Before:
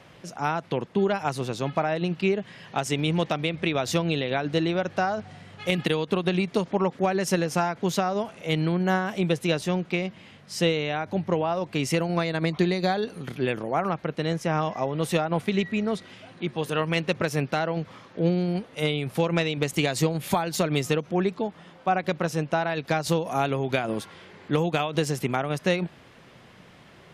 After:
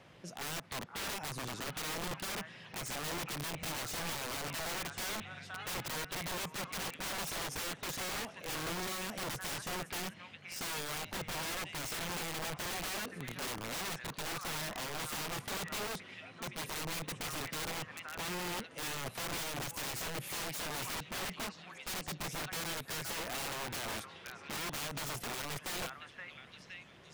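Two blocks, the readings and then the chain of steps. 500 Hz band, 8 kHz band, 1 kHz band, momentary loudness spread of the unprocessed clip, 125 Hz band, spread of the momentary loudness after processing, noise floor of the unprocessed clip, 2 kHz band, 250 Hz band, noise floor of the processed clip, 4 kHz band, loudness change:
-19.0 dB, -1.0 dB, -13.0 dB, 6 LU, -18.0 dB, 5 LU, -51 dBFS, -8.5 dB, -19.5 dB, -55 dBFS, -6.0 dB, -12.0 dB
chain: delay with a stepping band-pass 0.517 s, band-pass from 1500 Hz, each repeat 0.7 oct, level -6.5 dB; dynamic EQ 4000 Hz, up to -6 dB, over -45 dBFS, Q 1.6; wrapped overs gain 26.5 dB; gain -7.5 dB

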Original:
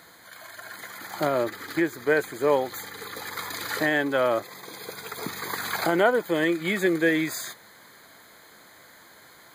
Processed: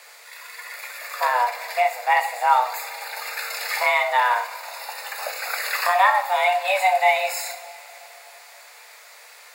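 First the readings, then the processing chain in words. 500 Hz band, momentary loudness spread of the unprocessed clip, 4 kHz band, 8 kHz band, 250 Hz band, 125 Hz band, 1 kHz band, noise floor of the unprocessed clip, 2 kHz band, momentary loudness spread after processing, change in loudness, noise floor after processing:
-1.5 dB, 17 LU, +5.0 dB, +4.5 dB, under -40 dB, under -40 dB, +12.5 dB, -52 dBFS, +5.0 dB, 17 LU, +4.0 dB, -47 dBFS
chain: band noise 1200–8900 Hz -58 dBFS; frequency shift +370 Hz; two-slope reverb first 0.48 s, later 3.8 s, from -20 dB, DRR 3.5 dB; gain +2.5 dB

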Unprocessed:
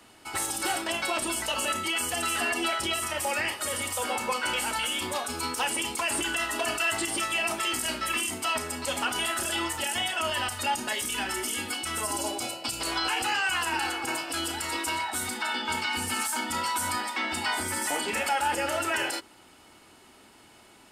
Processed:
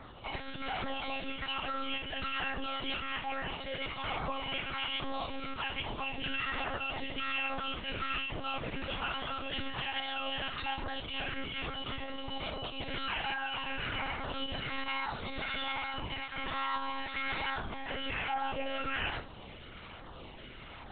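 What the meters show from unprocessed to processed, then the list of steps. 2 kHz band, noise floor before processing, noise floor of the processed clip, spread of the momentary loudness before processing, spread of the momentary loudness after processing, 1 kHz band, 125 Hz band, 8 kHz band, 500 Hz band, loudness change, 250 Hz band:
-7.0 dB, -55 dBFS, -48 dBFS, 4 LU, 6 LU, -7.0 dB, 0.0 dB, under -40 dB, -7.5 dB, -8.0 dB, -6.5 dB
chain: in parallel at +2.5 dB: compressor 6:1, threshold -41 dBFS, peak gain reduction 17 dB; on the sum: limiter -23.5 dBFS, peak gain reduction 8.5 dB; reverse; upward compressor, threshold -39 dBFS; reverse; LFO notch saw down 1.2 Hz 370–3000 Hz; Schroeder reverb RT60 0.54 s, combs from 27 ms, DRR 10 dB; monotone LPC vocoder at 8 kHz 270 Hz; gain -1.5 dB

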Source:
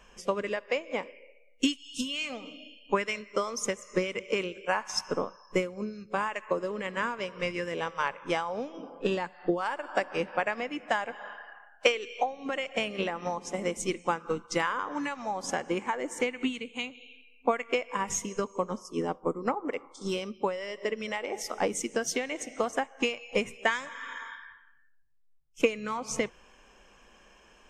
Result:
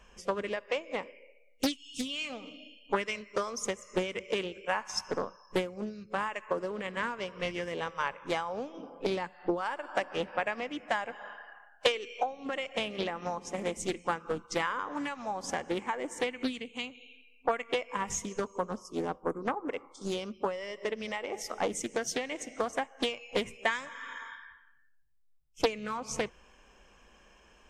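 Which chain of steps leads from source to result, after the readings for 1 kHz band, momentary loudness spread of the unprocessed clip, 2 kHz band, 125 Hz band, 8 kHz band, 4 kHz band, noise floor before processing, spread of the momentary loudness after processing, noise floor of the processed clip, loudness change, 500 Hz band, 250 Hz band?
-2.0 dB, 7 LU, -3.0 dB, -3.0 dB, -3.0 dB, -1.5 dB, -59 dBFS, 7 LU, -61 dBFS, -2.5 dB, -2.5 dB, -3.0 dB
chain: bell 64 Hz +6 dB 1.6 oct; Doppler distortion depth 0.61 ms; gain -2.5 dB

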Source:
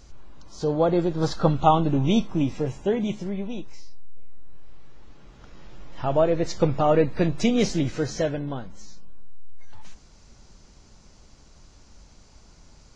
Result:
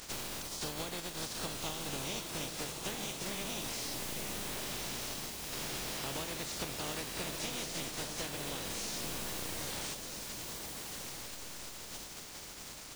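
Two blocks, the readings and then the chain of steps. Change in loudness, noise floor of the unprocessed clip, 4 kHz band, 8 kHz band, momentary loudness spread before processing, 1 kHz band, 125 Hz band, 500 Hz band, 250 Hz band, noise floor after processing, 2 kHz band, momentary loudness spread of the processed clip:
-14.5 dB, -52 dBFS, +0.5 dB, n/a, 11 LU, -16.0 dB, -18.5 dB, -19.0 dB, -19.0 dB, -47 dBFS, -2.5 dB, 7 LU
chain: spectral contrast lowered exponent 0.24; compressor 12:1, threshold -35 dBFS, peak gain reduction 23 dB; dynamic EQ 1400 Hz, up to -5 dB, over -53 dBFS, Q 0.71; on a send: diffused feedback echo 1.323 s, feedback 41%, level -5 dB; on the sum: slew limiter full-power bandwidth 100 Hz

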